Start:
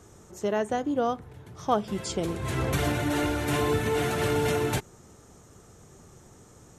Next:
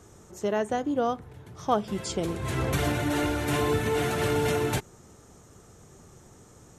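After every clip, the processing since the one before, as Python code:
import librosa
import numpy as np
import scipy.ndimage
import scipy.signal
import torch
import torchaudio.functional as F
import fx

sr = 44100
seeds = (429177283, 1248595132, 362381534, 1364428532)

y = x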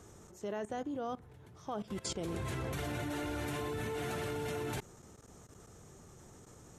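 y = fx.level_steps(x, sr, step_db=18)
y = F.gain(torch.from_numpy(y), -1.5).numpy()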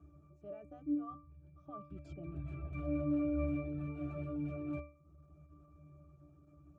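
y = fx.dereverb_blind(x, sr, rt60_s=0.73)
y = fx.octave_resonator(y, sr, note='D', decay_s=0.38)
y = F.gain(torch.from_numpy(y), 11.0).numpy()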